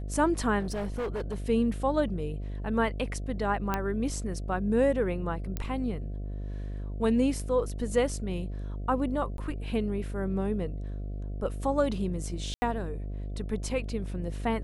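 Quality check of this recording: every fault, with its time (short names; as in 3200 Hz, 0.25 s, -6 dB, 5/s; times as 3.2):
buzz 50 Hz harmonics 14 -35 dBFS
0.59–1.36 clipped -28.5 dBFS
3.74 pop -14 dBFS
5.57 pop -18 dBFS
9.37–9.38 gap 12 ms
12.54–12.62 gap 80 ms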